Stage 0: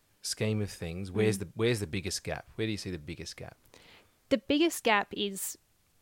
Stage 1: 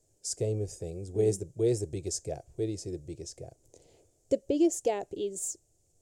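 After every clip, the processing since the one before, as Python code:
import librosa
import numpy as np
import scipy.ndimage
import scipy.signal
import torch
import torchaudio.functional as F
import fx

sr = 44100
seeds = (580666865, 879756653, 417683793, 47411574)

y = fx.curve_eq(x, sr, hz=(140.0, 220.0, 350.0, 680.0, 1100.0, 1800.0, 4000.0, 7100.0, 14000.0), db=(0, -11, 4, 0, -22, -20, -14, 7, -14))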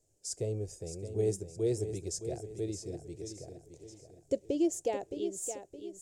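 y = fx.echo_feedback(x, sr, ms=617, feedback_pct=40, wet_db=-9.5)
y = y * librosa.db_to_amplitude(-4.0)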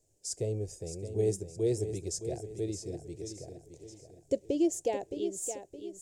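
y = fx.peak_eq(x, sr, hz=1300.0, db=-12.5, octaves=0.23)
y = y * librosa.db_to_amplitude(1.5)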